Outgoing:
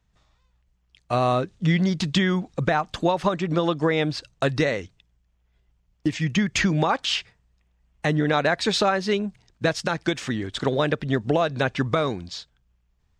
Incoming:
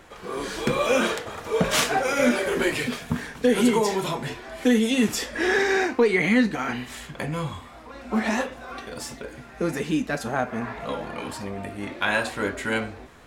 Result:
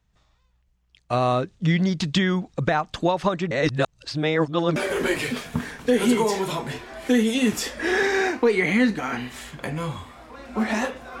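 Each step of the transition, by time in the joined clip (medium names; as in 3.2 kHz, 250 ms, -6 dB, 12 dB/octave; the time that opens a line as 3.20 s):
outgoing
3.51–4.76 s: reverse
4.76 s: go over to incoming from 2.32 s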